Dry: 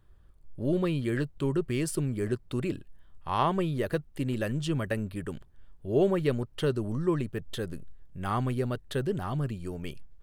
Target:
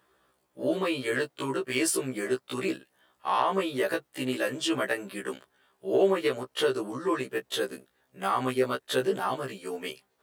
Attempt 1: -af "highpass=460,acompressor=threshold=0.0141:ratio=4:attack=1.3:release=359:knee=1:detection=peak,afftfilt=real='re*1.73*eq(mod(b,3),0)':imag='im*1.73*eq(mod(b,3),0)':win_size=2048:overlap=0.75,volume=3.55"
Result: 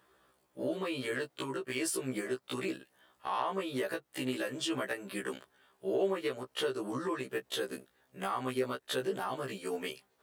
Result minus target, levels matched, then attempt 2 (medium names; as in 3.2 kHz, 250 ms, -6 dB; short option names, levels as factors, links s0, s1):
compression: peak gain reduction +8 dB
-af "highpass=460,acompressor=threshold=0.0473:ratio=4:attack=1.3:release=359:knee=1:detection=peak,afftfilt=real='re*1.73*eq(mod(b,3),0)':imag='im*1.73*eq(mod(b,3),0)':win_size=2048:overlap=0.75,volume=3.55"